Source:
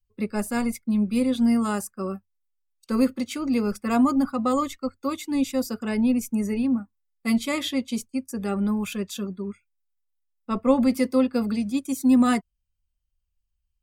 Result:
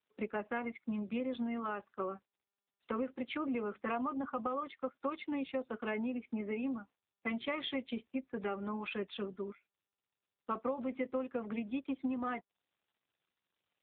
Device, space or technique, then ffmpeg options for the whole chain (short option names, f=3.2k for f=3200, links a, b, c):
voicemail: -filter_complex "[0:a]asplit=3[a][b][c];[a]afade=t=out:st=8.25:d=0.02[d];[b]highshelf=f=9.5k:g=-3.5,afade=t=in:st=8.25:d=0.02,afade=t=out:st=9.2:d=0.02[e];[c]afade=t=in:st=9.2:d=0.02[f];[d][e][f]amix=inputs=3:normalize=0,highpass=410,lowpass=3.1k,acompressor=threshold=-32dB:ratio=10" -ar 8000 -c:a libopencore_amrnb -b:a 7400